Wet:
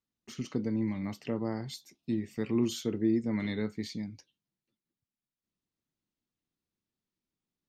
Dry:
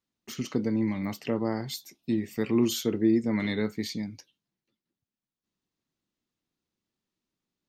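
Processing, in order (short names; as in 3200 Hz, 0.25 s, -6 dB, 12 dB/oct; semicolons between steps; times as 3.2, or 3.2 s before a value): LPF 9700 Hz 12 dB/oct; low shelf 210 Hz +5.5 dB; gain -6.5 dB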